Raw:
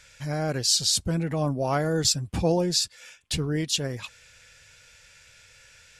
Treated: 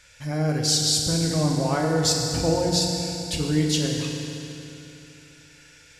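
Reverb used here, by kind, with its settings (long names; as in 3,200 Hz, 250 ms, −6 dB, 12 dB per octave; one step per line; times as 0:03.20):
feedback delay network reverb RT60 3.2 s, high-frequency decay 0.9×, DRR 0 dB
level −1 dB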